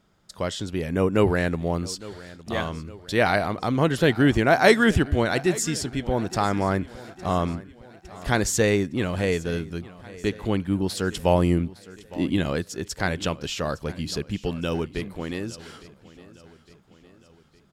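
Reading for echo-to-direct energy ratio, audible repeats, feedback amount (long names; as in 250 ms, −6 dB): −17.5 dB, 3, 53%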